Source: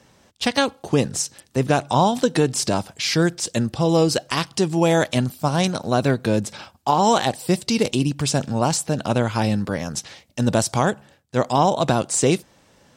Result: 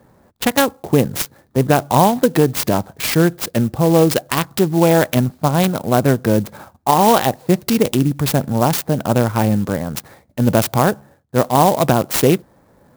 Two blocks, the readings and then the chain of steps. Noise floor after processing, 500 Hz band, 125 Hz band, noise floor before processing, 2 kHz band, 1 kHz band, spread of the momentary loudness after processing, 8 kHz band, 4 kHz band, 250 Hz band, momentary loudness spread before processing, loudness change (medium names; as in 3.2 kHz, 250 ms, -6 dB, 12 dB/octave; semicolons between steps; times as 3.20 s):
-55 dBFS, +4.5 dB, +5.0 dB, -57 dBFS, +3.0 dB, +4.5 dB, 8 LU, +0.5 dB, +0.5 dB, +5.0 dB, 7 LU, +4.5 dB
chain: local Wiener filter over 15 samples; sampling jitter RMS 0.042 ms; trim +5 dB